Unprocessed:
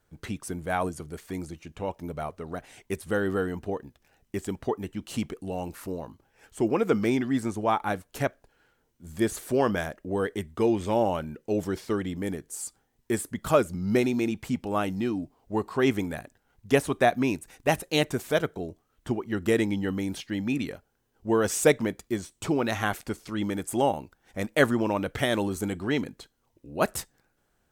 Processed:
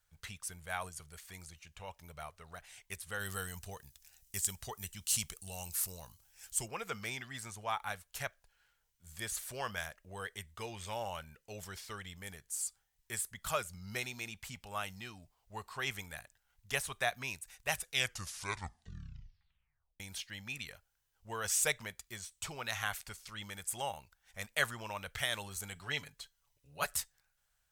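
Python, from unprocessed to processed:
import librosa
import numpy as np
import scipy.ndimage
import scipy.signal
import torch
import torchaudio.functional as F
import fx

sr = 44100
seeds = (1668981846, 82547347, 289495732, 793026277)

y = fx.bass_treble(x, sr, bass_db=5, treble_db=15, at=(3.19, 6.65), fade=0.02)
y = fx.comb(y, sr, ms=7.0, depth=0.65, at=(25.75, 26.97))
y = fx.edit(y, sr, fx.tape_stop(start_s=17.68, length_s=2.32), tone=tone)
y = fx.tone_stack(y, sr, knobs='10-0-10')
y = F.gain(torch.from_numpy(y), -1.0).numpy()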